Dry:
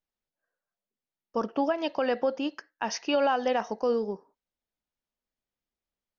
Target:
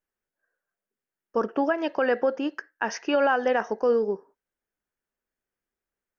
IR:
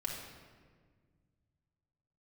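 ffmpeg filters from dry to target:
-af "equalizer=f=400:t=o:w=0.67:g=7,equalizer=f=1.6k:t=o:w=0.67:g=9,equalizer=f=4k:t=o:w=0.67:g=-8"

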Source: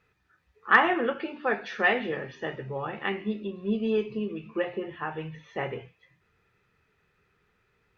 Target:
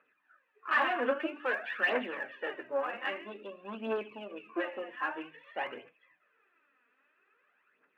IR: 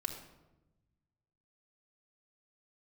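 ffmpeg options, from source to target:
-af "aeval=exprs='(tanh(22.4*val(0)+0.45)-tanh(0.45))/22.4':c=same,highpass=f=270:w=0.5412,highpass=f=270:w=1.3066,equalizer=f=270:t=q:w=4:g=7,equalizer=f=410:t=q:w=4:g=-4,equalizer=f=590:t=q:w=4:g=9,equalizer=f=1.1k:t=q:w=4:g=8,equalizer=f=1.6k:t=q:w=4:g=10,equalizer=f=2.7k:t=q:w=4:g=7,lowpass=f=3.1k:w=0.5412,lowpass=f=3.1k:w=1.3066,aphaser=in_gain=1:out_gain=1:delay=4.3:decay=0.59:speed=0.51:type=triangular,volume=-6dB"

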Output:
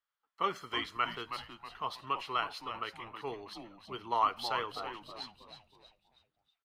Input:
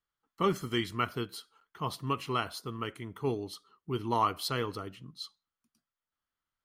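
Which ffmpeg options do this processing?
-filter_complex "[0:a]acrossover=split=520 4900:gain=0.126 1 0.2[a][b][c];[a][b][c]amix=inputs=3:normalize=0,asplit=6[d][e][f][g][h][i];[e]adelay=320,afreqshift=-110,volume=-9dB[j];[f]adelay=640,afreqshift=-220,volume=-16.5dB[k];[g]adelay=960,afreqshift=-330,volume=-24.1dB[l];[h]adelay=1280,afreqshift=-440,volume=-31.6dB[m];[i]adelay=1600,afreqshift=-550,volume=-39.1dB[n];[d][j][k][l][m][n]amix=inputs=6:normalize=0"

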